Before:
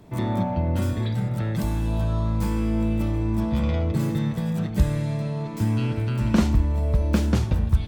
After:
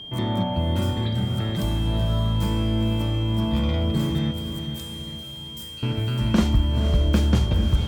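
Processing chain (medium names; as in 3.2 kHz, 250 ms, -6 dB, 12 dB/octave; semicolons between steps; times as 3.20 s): 4.31–5.83 s: differentiator; echo that smears into a reverb 502 ms, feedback 51%, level -8.5 dB; whistle 3.2 kHz -36 dBFS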